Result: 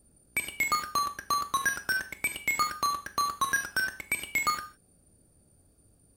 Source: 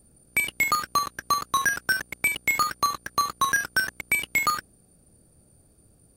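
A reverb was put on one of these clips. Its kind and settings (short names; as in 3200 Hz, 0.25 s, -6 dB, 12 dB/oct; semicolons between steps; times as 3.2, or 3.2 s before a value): non-linear reverb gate 0.19 s falling, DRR 8.5 dB; gain -5 dB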